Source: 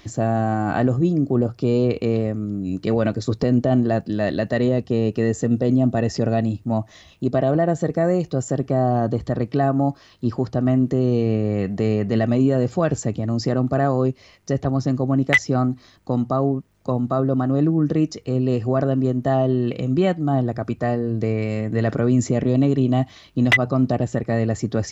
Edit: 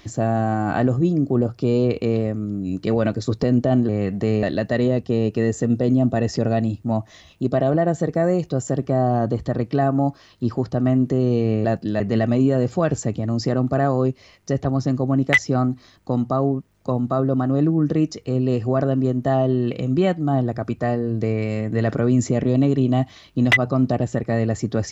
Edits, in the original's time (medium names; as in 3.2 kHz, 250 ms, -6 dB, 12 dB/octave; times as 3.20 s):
3.89–4.24 s: swap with 11.46–12.00 s